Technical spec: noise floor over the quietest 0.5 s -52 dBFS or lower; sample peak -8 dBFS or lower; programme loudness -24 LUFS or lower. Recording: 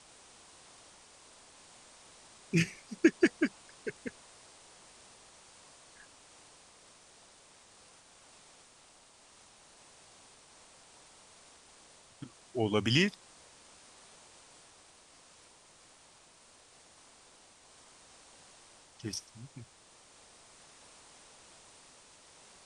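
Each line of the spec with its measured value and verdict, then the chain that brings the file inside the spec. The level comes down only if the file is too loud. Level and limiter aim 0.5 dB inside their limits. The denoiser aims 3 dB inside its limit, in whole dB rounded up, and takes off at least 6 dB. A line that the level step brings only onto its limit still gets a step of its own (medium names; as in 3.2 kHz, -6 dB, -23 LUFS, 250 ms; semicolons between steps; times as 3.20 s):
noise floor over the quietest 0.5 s -60 dBFS: pass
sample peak -10.5 dBFS: pass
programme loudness -32.0 LUFS: pass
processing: none needed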